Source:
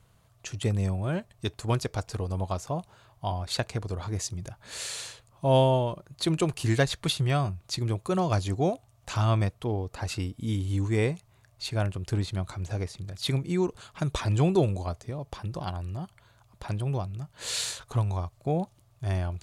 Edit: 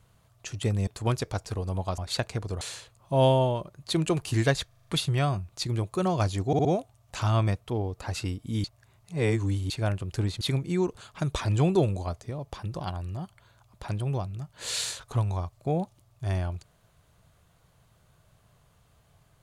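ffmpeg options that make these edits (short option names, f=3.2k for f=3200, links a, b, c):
-filter_complex "[0:a]asplit=15[a][b][c][d][e][f][g][h][i][j][k][l][m][n][o];[a]atrim=end=0.872[p];[b]atrim=start=1.498:end=2.612[q];[c]atrim=start=3.378:end=4.012[r];[d]atrim=start=4.928:end=7.032[s];[e]atrim=start=6.988:end=7.032[t];[f]atrim=start=6.988:end=7.032[u];[g]atrim=start=6.988:end=7.032[v];[h]atrim=start=6.988:end=7.032[w];[i]atrim=start=6.988:end=8.652[x];[j]atrim=start=8.588:end=8.652[y];[k]atrim=start=8.588:end=8.652[z];[l]atrim=start=8.588:end=10.582[aa];[m]atrim=start=10.578:end=11.642,asetpts=PTS-STARTPTS,areverse[ab];[n]atrim=start=11.638:end=12.352[ac];[o]atrim=start=13.208[ad];[p][q]acrossfade=d=0.004:c1=hsin:c2=hsin[ae];[ae][r]acrossfade=d=0.004:c1=hsin:c2=hsin[af];[af][s]acrossfade=d=0.004:c1=hsin:c2=hsin[ag];[ag][t]acrossfade=d=0.004:c1=hsin:c2=hsin[ah];[ah][u]acrossfade=d=0.004:c1=hsin:c2=hsin[ai];[ai][v]acrossfade=d=0.004:c1=hsin:c2=hsin[aj];[aj][w]acrossfade=d=0.004:c1=hsin:c2=hsin[ak];[ak][x]acrossfade=d=0.004:c1=hsin:c2=hsin[al];[al][y]acrossfade=d=0.004:c1=hsin:c2=hsin[am];[am][z]acrossfade=d=0.004:c1=hsin:c2=hsin[an];[an][aa]acrossfade=d=0.004:c1=hsin:c2=hsin[ao];[ao][ab]acrossfade=d=0.004:c1=hsin:c2=hsin[ap];[ap][ac]acrossfade=d=0.004:c1=hsin:c2=hsin[aq];[aq][ad]acrossfade=d=0.004:c1=hsin:c2=hsin"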